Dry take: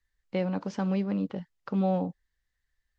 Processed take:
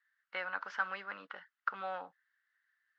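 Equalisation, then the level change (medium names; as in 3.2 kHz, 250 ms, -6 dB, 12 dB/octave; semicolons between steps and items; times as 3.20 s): ladder band-pass 1.6 kHz, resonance 65%; band-stop 2.4 kHz, Q 18; +14.0 dB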